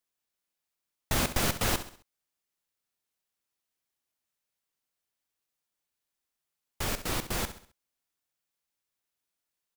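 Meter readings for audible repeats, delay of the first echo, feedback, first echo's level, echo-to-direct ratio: 3, 66 ms, 41%, -12.0 dB, -11.0 dB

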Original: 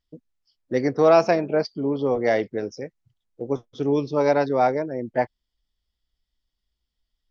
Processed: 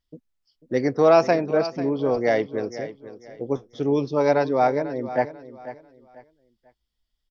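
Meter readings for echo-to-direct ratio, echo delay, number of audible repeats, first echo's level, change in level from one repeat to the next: -13.5 dB, 493 ms, 2, -14.0 dB, -11.0 dB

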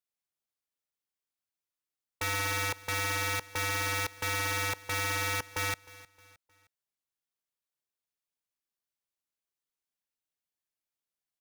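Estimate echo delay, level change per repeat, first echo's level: 310 ms, -7.5 dB, -20.0 dB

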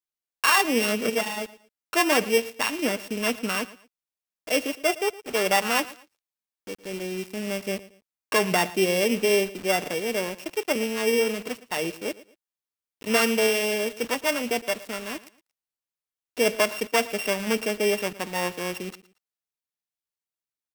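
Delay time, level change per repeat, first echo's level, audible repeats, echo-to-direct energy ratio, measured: 114 ms, -11.0 dB, -18.5 dB, 2, -18.0 dB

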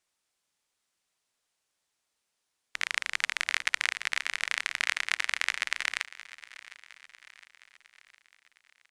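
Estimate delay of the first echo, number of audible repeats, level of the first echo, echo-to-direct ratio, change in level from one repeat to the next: 711 ms, 4, -18.0 dB, -16.5 dB, -5.5 dB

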